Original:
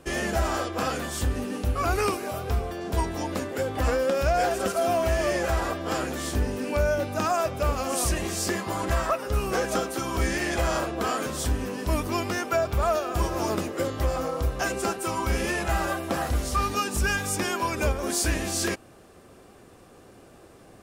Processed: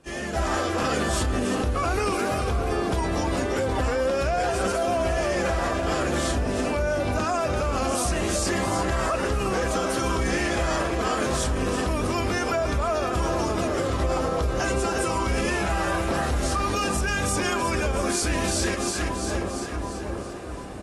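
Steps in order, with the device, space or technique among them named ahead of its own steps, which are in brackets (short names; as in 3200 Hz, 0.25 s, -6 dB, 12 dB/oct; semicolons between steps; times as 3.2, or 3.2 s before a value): LPF 11000 Hz 12 dB/oct; split-band echo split 1200 Hz, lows 0.739 s, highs 0.339 s, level -10 dB; low-bitrate web radio (AGC gain up to 16.5 dB; limiter -11.5 dBFS, peak gain reduction 10 dB; gain -6 dB; AAC 32 kbps 32000 Hz)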